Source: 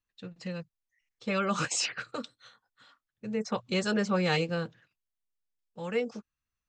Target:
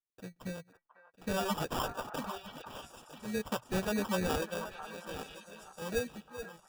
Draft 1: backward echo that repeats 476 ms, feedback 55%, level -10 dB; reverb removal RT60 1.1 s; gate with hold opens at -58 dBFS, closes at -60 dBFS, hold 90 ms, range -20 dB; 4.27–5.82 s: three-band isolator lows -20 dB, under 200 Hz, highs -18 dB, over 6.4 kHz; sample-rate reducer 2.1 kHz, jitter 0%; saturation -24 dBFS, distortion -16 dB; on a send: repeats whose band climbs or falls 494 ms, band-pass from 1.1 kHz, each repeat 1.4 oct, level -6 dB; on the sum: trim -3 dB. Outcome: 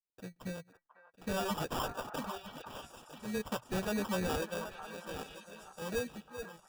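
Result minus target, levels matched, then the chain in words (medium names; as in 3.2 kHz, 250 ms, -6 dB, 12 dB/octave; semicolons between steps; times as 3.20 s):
saturation: distortion +17 dB
backward echo that repeats 476 ms, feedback 55%, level -10 dB; reverb removal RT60 1.1 s; gate with hold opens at -58 dBFS, closes at -60 dBFS, hold 90 ms, range -20 dB; 4.27–5.82 s: three-band isolator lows -20 dB, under 200 Hz, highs -18 dB, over 6.4 kHz; sample-rate reducer 2.1 kHz, jitter 0%; saturation -13.5 dBFS, distortion -34 dB; on a send: repeats whose band climbs or falls 494 ms, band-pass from 1.1 kHz, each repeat 1.4 oct, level -6 dB; on the sum: trim -3 dB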